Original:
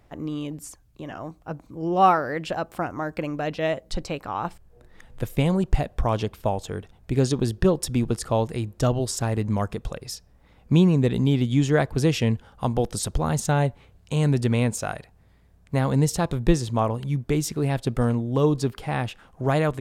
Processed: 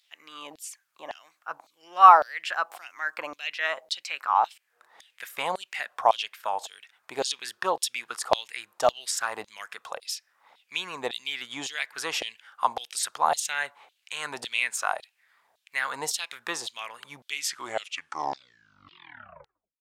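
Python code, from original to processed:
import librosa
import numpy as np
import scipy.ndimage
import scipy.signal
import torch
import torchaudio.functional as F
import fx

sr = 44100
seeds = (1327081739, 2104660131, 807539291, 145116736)

y = fx.tape_stop_end(x, sr, length_s=2.57)
y = fx.filter_lfo_highpass(y, sr, shape='saw_down', hz=1.8, low_hz=700.0, high_hz=3900.0, q=3.3)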